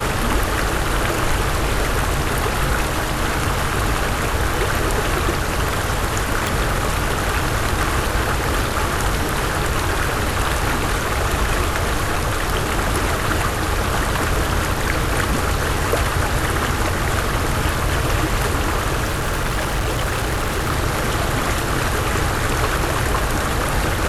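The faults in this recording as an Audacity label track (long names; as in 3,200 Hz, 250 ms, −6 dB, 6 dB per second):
6.470000	6.470000	click
19.040000	20.730000	clipping −16.5 dBFS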